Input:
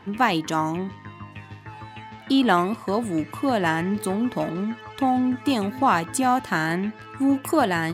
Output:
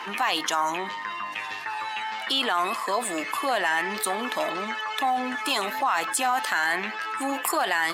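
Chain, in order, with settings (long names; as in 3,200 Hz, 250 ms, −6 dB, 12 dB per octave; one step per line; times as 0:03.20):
spectral magnitudes quantised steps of 15 dB
high-pass filter 920 Hz 12 dB per octave
brickwall limiter −19.5 dBFS, peak gain reduction 10.5 dB
envelope flattener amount 50%
level +4 dB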